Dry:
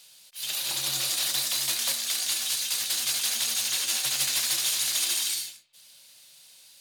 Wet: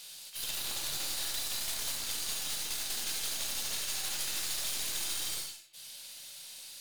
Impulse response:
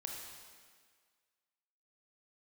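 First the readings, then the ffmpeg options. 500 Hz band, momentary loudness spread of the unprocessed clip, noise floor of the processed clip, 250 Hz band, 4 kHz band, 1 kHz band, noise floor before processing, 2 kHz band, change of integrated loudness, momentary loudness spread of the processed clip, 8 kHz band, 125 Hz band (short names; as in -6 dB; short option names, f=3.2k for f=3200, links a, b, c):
-3.0 dB, 5 LU, -48 dBFS, -2.5 dB, -8.5 dB, -4.5 dB, -54 dBFS, -7.5 dB, -8.5 dB, 12 LU, -8.5 dB, -4.0 dB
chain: -filter_complex "[0:a]aeval=exprs='0.2*(cos(1*acos(clip(val(0)/0.2,-1,1)))-cos(1*PI/2))+0.0355*(cos(6*acos(clip(val(0)/0.2,-1,1)))-cos(6*PI/2))':c=same,acompressor=threshold=-45dB:ratio=2.5[a];[1:a]atrim=start_sample=2205,afade=t=out:st=0.15:d=0.01,atrim=end_sample=7056[b];[a][b]afir=irnorm=-1:irlink=0,volume=8.5dB"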